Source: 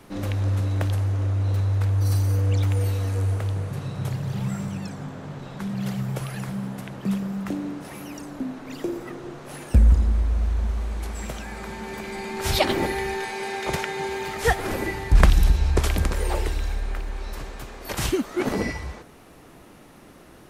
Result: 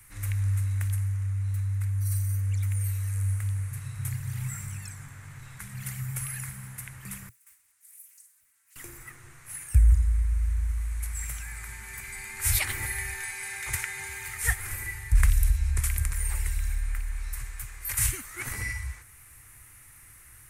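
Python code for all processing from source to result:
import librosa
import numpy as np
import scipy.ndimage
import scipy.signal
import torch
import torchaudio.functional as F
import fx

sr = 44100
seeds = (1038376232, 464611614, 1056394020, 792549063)

y = fx.chain(x, sr, fx.differentiator(),
    fx.stiff_resonator(f0_hz=88.0, decay_s=0.58, stiffness=0.008),
    fx.doppler_dist(depth_ms=0.86), at=(7.29, 8.76))
y = fx.curve_eq(y, sr, hz=(120.0, 170.0, 620.0, 950.0, 2100.0, 3200.0, 5000.0, 9200.0, 14000.0), db=(0, -22, -24, -13, 2, -10, -6, 12, 9))
y = fx.rider(y, sr, range_db=4, speed_s=2.0)
y = y * 10.0 ** (-4.0 / 20.0)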